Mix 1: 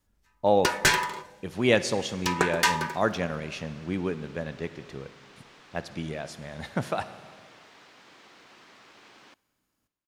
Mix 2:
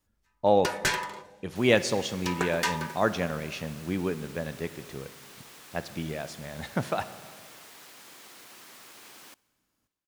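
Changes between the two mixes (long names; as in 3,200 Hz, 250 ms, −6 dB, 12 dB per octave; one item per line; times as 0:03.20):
first sound −5.5 dB
second sound: remove high-frequency loss of the air 150 metres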